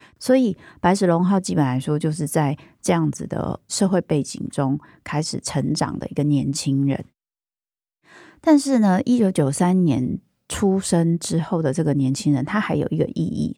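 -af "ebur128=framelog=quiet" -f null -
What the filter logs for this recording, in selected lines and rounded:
Integrated loudness:
  I:         -21.0 LUFS
  Threshold: -31.2 LUFS
Loudness range:
  LRA:         4.2 LU
  Threshold: -41.6 LUFS
  LRA low:   -23.8 LUFS
  LRA high:  -19.6 LUFS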